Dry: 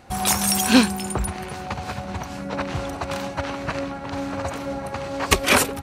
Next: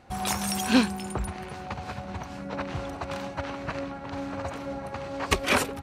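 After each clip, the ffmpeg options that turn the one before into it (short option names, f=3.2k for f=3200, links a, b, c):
-af "highshelf=f=6.7k:g=-8.5,volume=-5.5dB"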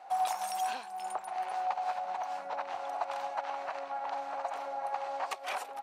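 -af "acompressor=threshold=-34dB:ratio=8,highpass=f=750:t=q:w=4.9,volume=-3dB"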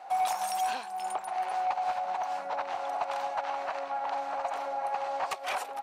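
-af "asoftclip=type=tanh:threshold=-26dB,volume=4.5dB"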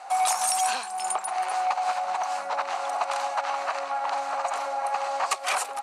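-af "crystalizer=i=4:c=0,highpass=f=190:w=0.5412,highpass=f=190:w=1.3066,equalizer=f=310:t=q:w=4:g=-5,equalizer=f=1.2k:t=q:w=4:g=6,equalizer=f=3.4k:t=q:w=4:g=-4,equalizer=f=5.5k:t=q:w=4:g=-3,lowpass=f=9.8k:w=0.5412,lowpass=f=9.8k:w=1.3066,volume=2.5dB"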